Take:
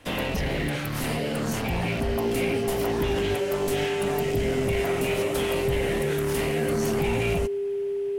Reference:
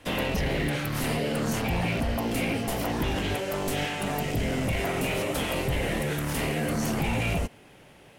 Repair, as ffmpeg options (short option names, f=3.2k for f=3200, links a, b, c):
-af "bandreject=f=400:w=30"